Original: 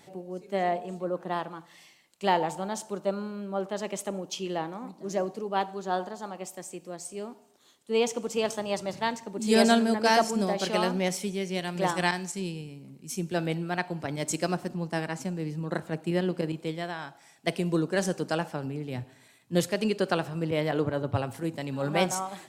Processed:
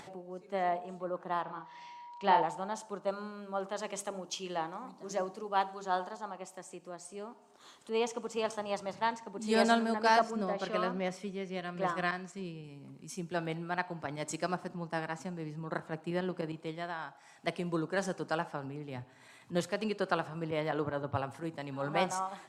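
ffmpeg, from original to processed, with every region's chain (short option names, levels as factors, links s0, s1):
-filter_complex "[0:a]asettb=1/sr,asplit=3[s0][s1][s2];[s0]atrim=end=1.434[s3];[s1]atrim=start=1.43:end=2.42,asetpts=PTS-STARTPTS,afade=t=in:d=0.004:c=qsin,afade=t=out:st=0.986:d=0.004:c=qsin,lowpass=f=5600:w=0.5412,lowpass=f=5600:w=1.3066,aeval=exprs='val(0)+0.00562*sin(2*PI*960*n/s)':c=same,asplit=2[s4][s5];[s5]adelay=36,volume=0.562[s6];[s4][s6]amix=inputs=2:normalize=0,atrim=end_sample=43659[s7];[s2]atrim=start=2.416[s8];[s3][s7]acrossfade=d=0.004:c1=hsin:c2=qsin[s9];[s9][s8]acrossfade=d=0.004:c1=qsin:c2=hsin,asettb=1/sr,asplit=3[s10][s11][s12];[s10]atrim=end=3.074[s13];[s11]atrim=start=3.07:end=6.17,asetpts=PTS-STARTPTS,afade=t=in:d=0.004:c=qsin,afade=t=out:st=3.096:d=0.004:c=qsin,highshelf=f=3300:g=7.5,bandreject=f=50:t=h:w=6,bandreject=f=100:t=h:w=6,bandreject=f=150:t=h:w=6,bandreject=f=200:t=h:w=6,bandreject=f=250:t=h:w=6,bandreject=f=300:t=h:w=6,bandreject=f=350:t=h:w=6,bandreject=f=400:t=h:w=6,bandreject=f=450:t=h:w=6[s14];[s12]atrim=start=6.166[s15];[s13][s14]acrossfade=d=0.004:c1=hsin:c2=qsin[s16];[s16][s15]acrossfade=d=0.004:c1=qsin:c2=hsin,asettb=1/sr,asplit=3[s17][s18][s19];[s17]atrim=end=10.194[s20];[s18]atrim=start=10.19:end=12.64,asetpts=PTS-STARTPTS,afade=t=in:d=0.004:c=qsin,afade=t=out:st=2.446:d=0.004:c=qsin,asuperstop=centerf=860:order=4:qfactor=5.8,highshelf=f=4400:g=-11[s21];[s19]atrim=start=12.636[s22];[s20][s21]acrossfade=d=0.004:c1=hsin:c2=qsin[s23];[s23][s22]acrossfade=d=0.004:c1=qsin:c2=hsin,lowpass=9300,equalizer=f=1100:w=0.97:g=8.5,acompressor=mode=upward:threshold=0.02:ratio=2.5,volume=0.376"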